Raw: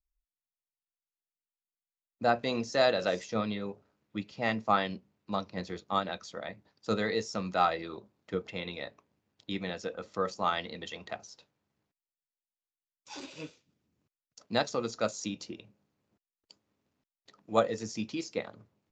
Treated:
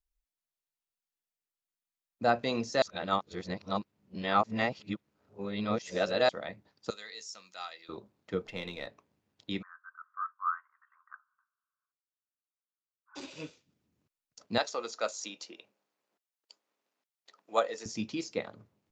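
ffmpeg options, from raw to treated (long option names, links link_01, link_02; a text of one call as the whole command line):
ffmpeg -i in.wav -filter_complex "[0:a]asettb=1/sr,asplit=3[link_01][link_02][link_03];[link_01]atrim=end=6.904[link_04];[link_02]atrim=start=6.9:end=7.89,asetpts=PTS-STARTPTS,afade=type=in:duration=0.004:curve=qsin,afade=type=out:start_time=0.986:duration=0.004:curve=qsin,aderivative[link_05];[link_03]atrim=start=7.886[link_06];[link_04][link_05]acrossfade=duration=0.004:curve1=hsin:curve2=qsin[link_07];[link_07][link_06]acrossfade=duration=0.004:curve1=qsin:curve2=hsin,asettb=1/sr,asplit=3[link_08][link_09][link_10];[link_08]atrim=end=8.444[link_11];[link_09]atrim=start=8.44:end=8.87,asetpts=PTS-STARTPTS,afade=type=in:duration=0.004:curve=qsin,afade=type=out:start_time=0.426:duration=0.004:curve=qsin,aeval=exprs='if(lt(val(0),0),0.708*val(0),val(0))':channel_layout=same[link_12];[link_10]atrim=start=8.866[link_13];[link_11][link_12]acrossfade=duration=0.004:curve1=hsin:curve2=qsin[link_14];[link_14][link_13]acrossfade=duration=0.004:curve1=qsin:curve2=hsin,asplit=3[link_15][link_16][link_17];[link_15]afade=type=out:start_time=9.61:duration=0.02[link_18];[link_16]asuperpass=centerf=1300:order=8:qfactor=2.5,afade=type=in:start_time=9.61:duration=0.02,afade=type=out:start_time=13.15:duration=0.02[link_19];[link_17]afade=type=in:start_time=13.15:duration=0.02[link_20];[link_18][link_19][link_20]amix=inputs=3:normalize=0,asettb=1/sr,asplit=3[link_21][link_22][link_23];[link_21]atrim=end=14.584[link_24];[link_22]atrim=start=14.58:end=17.86,asetpts=PTS-STARTPTS,afade=type=in:duration=0.004:curve=qsin,afade=type=out:start_time=3.276:duration=0.004:curve=qsin,highpass=530[link_25];[link_23]atrim=start=17.856[link_26];[link_24][link_25]acrossfade=duration=0.004:curve1=hsin:curve2=qsin[link_27];[link_27][link_26]acrossfade=duration=0.004:curve1=qsin:curve2=hsin,asplit=3[link_28][link_29][link_30];[link_28]atrim=end=2.822[link_31];[link_29]atrim=start=2.818:end=6.292,asetpts=PTS-STARTPTS,areverse[link_32];[link_30]atrim=start=6.288[link_33];[link_31][link_32]acrossfade=duration=0.004:curve1=hsin:curve2=hsin[link_34];[link_34][link_33]acrossfade=duration=0.004:curve1=hsin:curve2=hsin" out.wav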